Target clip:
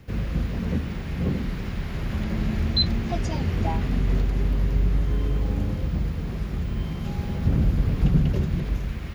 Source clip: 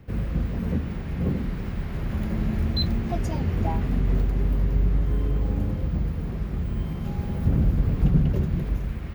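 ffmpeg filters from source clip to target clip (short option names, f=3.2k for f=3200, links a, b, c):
-filter_complex "[0:a]equalizer=f=7.5k:t=o:w=2.9:g=10,acrossover=split=5800[a][b];[b]acompressor=threshold=-56dB:ratio=4:attack=1:release=60[c];[a][c]amix=inputs=2:normalize=0"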